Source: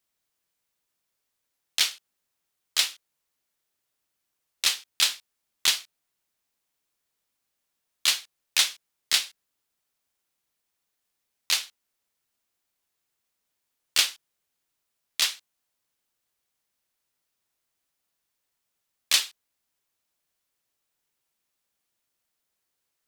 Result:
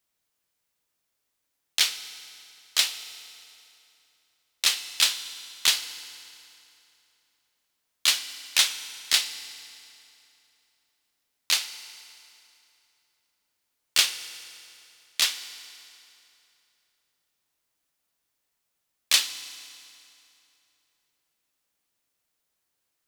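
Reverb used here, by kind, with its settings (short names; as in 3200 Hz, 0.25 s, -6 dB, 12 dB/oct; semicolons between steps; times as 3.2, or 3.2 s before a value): FDN reverb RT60 2.9 s, high-frequency decay 0.85×, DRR 10.5 dB; gain +1 dB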